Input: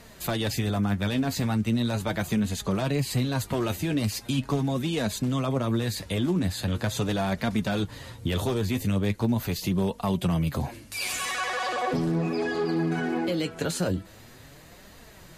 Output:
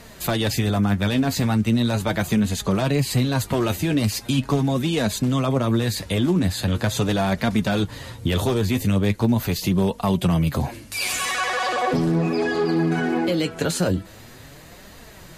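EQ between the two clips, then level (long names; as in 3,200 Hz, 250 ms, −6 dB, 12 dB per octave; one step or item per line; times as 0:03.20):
no EQ move
+5.5 dB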